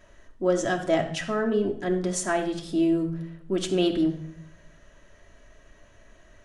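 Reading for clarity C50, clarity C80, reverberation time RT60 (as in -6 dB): 10.0 dB, 13.5 dB, 0.65 s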